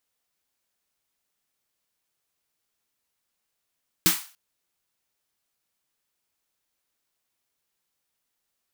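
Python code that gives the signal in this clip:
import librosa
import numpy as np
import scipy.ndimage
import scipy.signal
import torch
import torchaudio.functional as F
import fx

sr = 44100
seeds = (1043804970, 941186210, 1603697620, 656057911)

y = fx.drum_snare(sr, seeds[0], length_s=0.29, hz=180.0, second_hz=320.0, noise_db=5.0, noise_from_hz=910.0, decay_s=0.15, noise_decay_s=0.38)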